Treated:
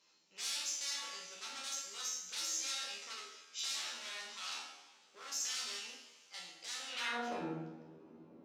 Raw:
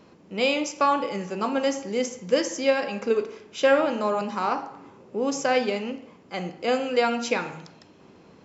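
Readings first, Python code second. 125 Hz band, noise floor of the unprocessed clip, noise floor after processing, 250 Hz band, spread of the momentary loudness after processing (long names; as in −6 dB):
below −15 dB, −53 dBFS, −66 dBFS, −22.5 dB, 16 LU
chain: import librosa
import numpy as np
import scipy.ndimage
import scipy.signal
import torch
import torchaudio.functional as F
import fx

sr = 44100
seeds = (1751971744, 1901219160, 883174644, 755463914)

y = fx.high_shelf(x, sr, hz=4100.0, db=3.5)
y = 10.0 ** (-25.5 / 20.0) * (np.abs((y / 10.0 ** (-25.5 / 20.0) + 3.0) % 4.0 - 2.0) - 1.0)
y = fx.rev_double_slope(y, sr, seeds[0], early_s=0.78, late_s=3.2, knee_db=-19, drr_db=-0.5)
y = fx.filter_sweep_bandpass(y, sr, from_hz=5600.0, to_hz=330.0, start_s=6.86, end_s=7.43, q=1.2)
y = fx.comb_fb(y, sr, f0_hz=80.0, decay_s=0.37, harmonics='all', damping=0.0, mix_pct=90)
y = y * 10.0 ** (3.0 / 20.0)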